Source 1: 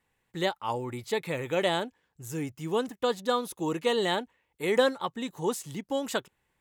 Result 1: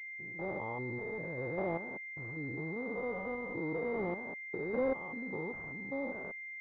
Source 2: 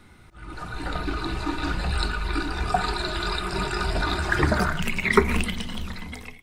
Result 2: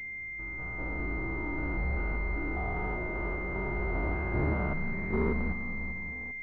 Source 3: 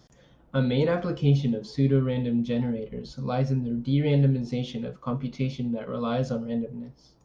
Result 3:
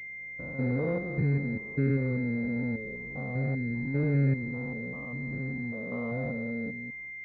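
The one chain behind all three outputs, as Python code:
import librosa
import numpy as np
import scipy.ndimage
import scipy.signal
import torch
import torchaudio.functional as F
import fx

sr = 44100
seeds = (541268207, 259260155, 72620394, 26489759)

y = fx.spec_steps(x, sr, hold_ms=200)
y = fx.pwm(y, sr, carrier_hz=2100.0)
y = y * 10.0 ** (-3.5 / 20.0)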